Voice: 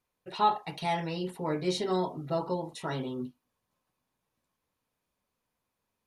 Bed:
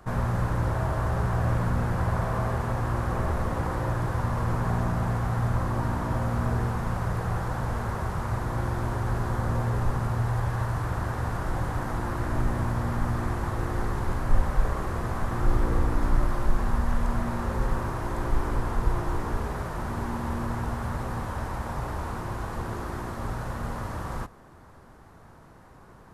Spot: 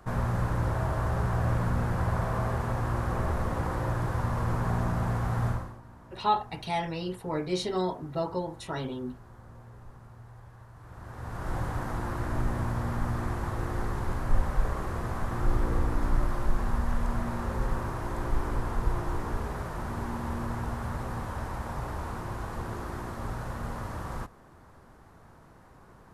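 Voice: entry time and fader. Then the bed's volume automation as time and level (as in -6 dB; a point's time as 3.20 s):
5.85 s, 0.0 dB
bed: 5.50 s -2 dB
5.81 s -22.5 dB
10.73 s -22.5 dB
11.52 s -3 dB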